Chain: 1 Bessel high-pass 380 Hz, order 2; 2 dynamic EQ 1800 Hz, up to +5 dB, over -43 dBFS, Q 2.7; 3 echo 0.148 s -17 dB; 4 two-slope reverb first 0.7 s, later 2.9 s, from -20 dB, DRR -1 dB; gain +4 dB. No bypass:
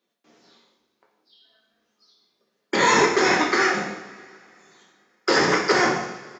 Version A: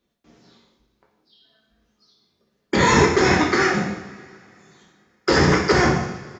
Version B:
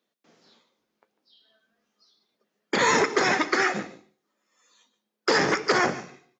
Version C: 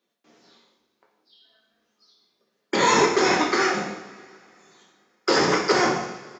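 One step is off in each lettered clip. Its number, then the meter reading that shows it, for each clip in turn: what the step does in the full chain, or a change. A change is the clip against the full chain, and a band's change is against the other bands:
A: 1, 125 Hz band +13.0 dB; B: 4, crest factor change +2.0 dB; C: 2, loudness change -1.0 LU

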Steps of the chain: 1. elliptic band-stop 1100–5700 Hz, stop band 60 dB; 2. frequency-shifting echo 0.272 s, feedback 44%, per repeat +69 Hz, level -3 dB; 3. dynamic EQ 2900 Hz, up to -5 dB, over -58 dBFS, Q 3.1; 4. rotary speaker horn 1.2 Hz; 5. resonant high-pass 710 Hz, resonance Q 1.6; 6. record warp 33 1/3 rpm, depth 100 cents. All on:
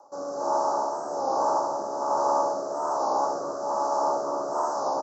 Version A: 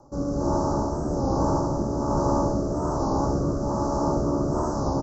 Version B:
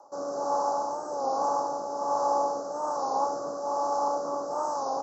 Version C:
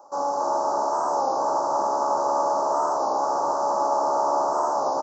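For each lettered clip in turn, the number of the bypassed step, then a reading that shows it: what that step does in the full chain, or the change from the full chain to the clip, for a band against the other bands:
5, 250 Hz band +15.0 dB; 2, 2 kHz band -2.0 dB; 4, momentary loudness spread change -3 LU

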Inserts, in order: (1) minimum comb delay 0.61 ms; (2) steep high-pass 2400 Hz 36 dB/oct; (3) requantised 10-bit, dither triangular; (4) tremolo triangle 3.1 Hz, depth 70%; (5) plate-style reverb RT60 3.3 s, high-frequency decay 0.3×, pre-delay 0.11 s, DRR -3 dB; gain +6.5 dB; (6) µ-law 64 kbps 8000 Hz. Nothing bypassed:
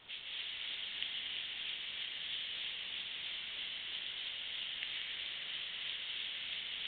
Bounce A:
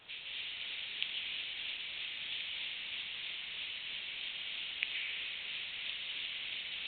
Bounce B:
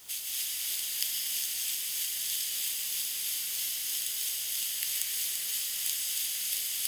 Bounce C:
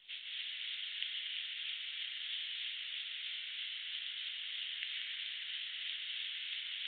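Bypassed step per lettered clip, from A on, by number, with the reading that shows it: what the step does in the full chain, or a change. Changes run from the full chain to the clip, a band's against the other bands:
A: 1, 2 kHz band +3.5 dB; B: 6, crest factor change +3.5 dB; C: 3, distortion -21 dB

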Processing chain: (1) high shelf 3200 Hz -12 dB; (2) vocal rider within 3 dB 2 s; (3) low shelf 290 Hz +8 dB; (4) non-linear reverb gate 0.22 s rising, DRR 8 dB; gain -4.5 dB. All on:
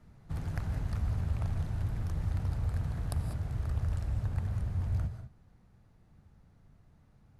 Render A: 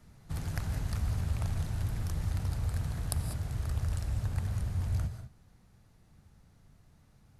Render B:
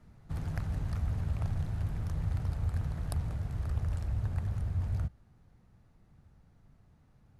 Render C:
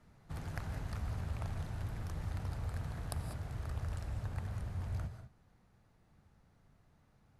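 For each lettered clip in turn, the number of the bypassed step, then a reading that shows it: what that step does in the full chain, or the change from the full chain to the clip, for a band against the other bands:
1, 8 kHz band +10.0 dB; 4, momentary loudness spread change -1 LU; 3, 125 Hz band -6.5 dB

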